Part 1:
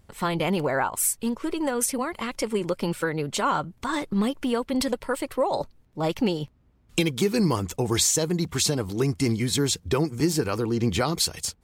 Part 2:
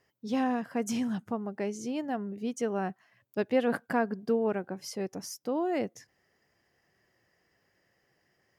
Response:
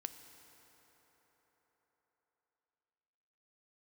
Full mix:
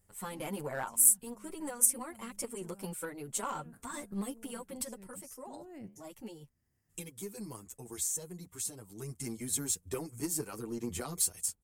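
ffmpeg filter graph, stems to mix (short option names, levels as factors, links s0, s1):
-filter_complex "[0:a]asplit=2[s0][s1];[s1]adelay=7.9,afreqshift=0.71[s2];[s0][s2]amix=inputs=2:normalize=1,volume=1.12,afade=t=out:st=4.57:d=0.66:silence=0.421697,afade=t=in:st=8.83:d=0.66:silence=0.473151,asplit=2[s3][s4];[1:a]asubboost=boost=9.5:cutoff=170,alimiter=limit=0.075:level=0:latency=1:release=12,flanger=delay=7.5:depth=6.3:regen=-80:speed=0.62:shape=sinusoidal,volume=0.668[s5];[s4]apad=whole_len=378534[s6];[s5][s6]sidechaincompress=threshold=0.00398:ratio=4:attack=16:release=406[s7];[s3][s7]amix=inputs=2:normalize=0,aeval=exprs='0.141*(cos(1*acos(clip(val(0)/0.141,-1,1)))-cos(1*PI/2))+0.0251*(cos(3*acos(clip(val(0)/0.141,-1,1)))-cos(3*PI/2))+0.00282*(cos(4*acos(clip(val(0)/0.141,-1,1)))-cos(4*PI/2))+0.00398*(cos(6*acos(clip(val(0)/0.141,-1,1)))-cos(6*PI/2))+0.00282*(cos(8*acos(clip(val(0)/0.141,-1,1)))-cos(8*PI/2))':c=same,highshelf=f=6200:t=q:w=1.5:g=13"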